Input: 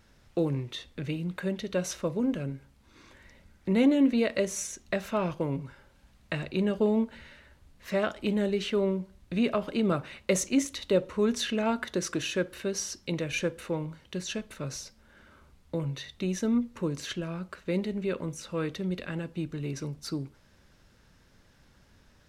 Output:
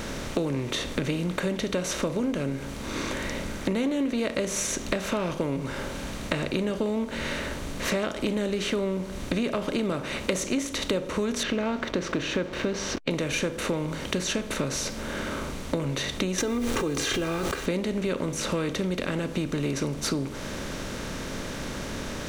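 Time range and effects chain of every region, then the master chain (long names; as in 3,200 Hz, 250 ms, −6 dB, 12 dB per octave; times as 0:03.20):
0:11.43–0:13.11: hold until the input has moved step −49 dBFS + high-frequency loss of the air 220 metres
0:16.38–0:17.66: comb filter 2.5 ms, depth 87% + bit-depth reduction 10 bits, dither none + background raised ahead of every attack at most 23 dB per second
whole clip: compressor on every frequency bin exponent 0.6; downward compressor 6 to 1, threshold −34 dBFS; level +9 dB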